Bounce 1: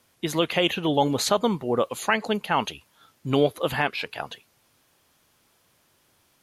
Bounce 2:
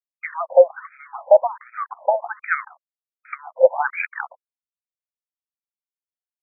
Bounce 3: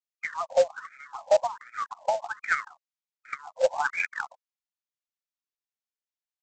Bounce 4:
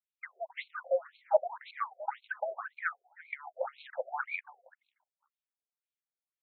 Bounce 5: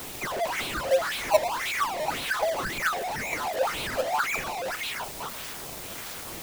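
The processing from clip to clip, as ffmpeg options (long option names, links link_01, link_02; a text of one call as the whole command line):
ffmpeg -i in.wav -af "equalizer=frequency=125:width_type=o:width=1:gain=-7,equalizer=frequency=500:width_type=o:width=1:gain=9,equalizer=frequency=1000:width_type=o:width=1:gain=-6,equalizer=frequency=2000:width_type=o:width=1:gain=5,equalizer=frequency=4000:width_type=o:width=1:gain=-7,aeval=exprs='val(0)*gte(abs(val(0)),0.0133)':channel_layout=same,afftfilt=real='re*between(b*sr/1024,680*pow(1800/680,0.5+0.5*sin(2*PI*1.3*pts/sr))/1.41,680*pow(1800/680,0.5+0.5*sin(2*PI*1.3*pts/sr))*1.41)':imag='im*between(b*sr/1024,680*pow(1800/680,0.5+0.5*sin(2*PI*1.3*pts/sr))/1.41,680*pow(1800/680,0.5+0.5*sin(2*PI*1.3*pts/sr))*1.41)':win_size=1024:overlap=0.75,volume=8.5dB" out.wav
ffmpeg -i in.wav -af "highpass=frequency=1200:poles=1,acontrast=64,aresample=16000,acrusher=bits=4:mode=log:mix=0:aa=0.000001,aresample=44100,volume=-7.5dB" out.wav
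ffmpeg -i in.wav -filter_complex "[0:a]asplit=2[link_01][link_02];[link_02]aecho=0:1:343|686|1029:0.473|0.0757|0.0121[link_03];[link_01][link_03]amix=inputs=2:normalize=0,afftfilt=real='re*between(b*sr/1024,500*pow(3100/500,0.5+0.5*sin(2*PI*1.9*pts/sr))/1.41,500*pow(3100/500,0.5+0.5*sin(2*PI*1.9*pts/sr))*1.41)':imag='im*between(b*sr/1024,500*pow(3100/500,0.5+0.5*sin(2*PI*1.9*pts/sr))/1.41,500*pow(3100/500,0.5+0.5*sin(2*PI*1.9*pts/sr))*1.41)':win_size=1024:overlap=0.75,volume=-1.5dB" out.wav
ffmpeg -i in.wav -filter_complex "[0:a]aeval=exprs='val(0)+0.5*0.0376*sgn(val(0))':channel_layout=same,asplit=2[link_01][link_02];[link_02]acrusher=samples=16:mix=1:aa=0.000001:lfo=1:lforange=25.6:lforate=1.6,volume=-3.5dB[link_03];[link_01][link_03]amix=inputs=2:normalize=0" out.wav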